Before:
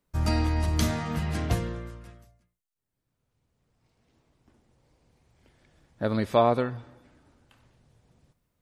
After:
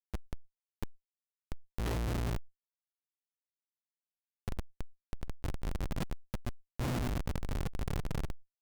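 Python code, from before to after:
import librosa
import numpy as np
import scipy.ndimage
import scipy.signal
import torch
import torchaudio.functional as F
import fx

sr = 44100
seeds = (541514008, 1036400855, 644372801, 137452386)

p1 = scipy.signal.medfilt(x, 41)
p2 = fx.dynamic_eq(p1, sr, hz=240.0, q=6.7, threshold_db=-47.0, ratio=4.0, max_db=4)
p3 = fx.gate_flip(p2, sr, shuts_db=-27.0, range_db=-41)
p4 = p3 + 0.49 * np.pad(p3, (int(0.9 * sr / 1000.0), 0))[:len(p3)]
p5 = fx.filter_lfo_notch(p4, sr, shape='square', hz=4.8, low_hz=380.0, high_hz=5200.0, q=1.1)
p6 = fx.leveller(p5, sr, passes=5)
p7 = 10.0 ** (-36.5 / 20.0) * np.tanh(p6 / 10.0 ** (-36.5 / 20.0))
p8 = p6 + F.gain(torch.from_numpy(p7), -3.0).numpy()
p9 = fx.low_shelf(p8, sr, hz=79.0, db=-11.5)
p10 = p9 + fx.echo_single(p9, sr, ms=100, db=-16.5, dry=0)
p11 = fx.schmitt(p10, sr, flips_db=-38.0)
p12 = fx.env_flatten(p11, sr, amount_pct=70)
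y = F.gain(torch.from_numpy(p12), 8.5).numpy()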